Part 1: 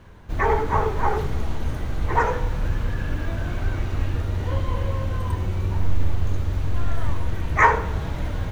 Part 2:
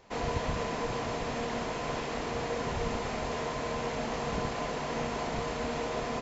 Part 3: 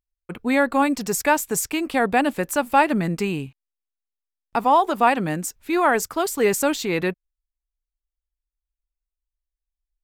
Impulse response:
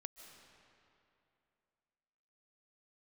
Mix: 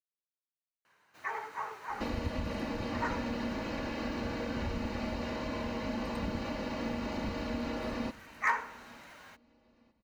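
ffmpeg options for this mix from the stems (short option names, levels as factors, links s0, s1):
-filter_complex "[0:a]highpass=1200,adelay=850,volume=0.299[s0];[1:a]aecho=1:1:3.5:0.82,acompressor=threshold=0.0126:ratio=6,lowpass=f=4100:t=q:w=1.6,adelay=1900,volume=1,asplit=2[s1][s2];[s2]volume=0.0841,aecho=0:1:906|1812|2718|3624|4530:1|0.34|0.116|0.0393|0.0134[s3];[s0][s1][s3]amix=inputs=3:normalize=0,equalizer=f=130:w=0.55:g=13,bandreject=f=3400:w=7.8,volume=8.91,asoftclip=hard,volume=0.112"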